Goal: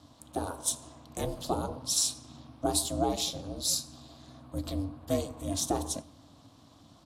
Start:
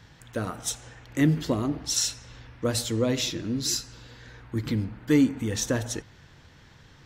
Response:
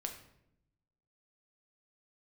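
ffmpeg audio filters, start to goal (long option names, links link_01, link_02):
-filter_complex "[0:a]firequalizer=gain_entry='entry(100,0);entry(200,-28);entry(370,-1);entry(860,4);entry(1700,-19);entry(3800,0);entry(6000,-3);entry(10000,9);entry(15000,-4)':delay=0.05:min_phase=1,aeval=exprs='val(0)*sin(2*PI*190*n/s)':channel_layout=same,asplit=2[link_01][link_02];[1:a]atrim=start_sample=2205[link_03];[link_02][link_03]afir=irnorm=-1:irlink=0,volume=-10.5dB[link_04];[link_01][link_04]amix=inputs=2:normalize=0"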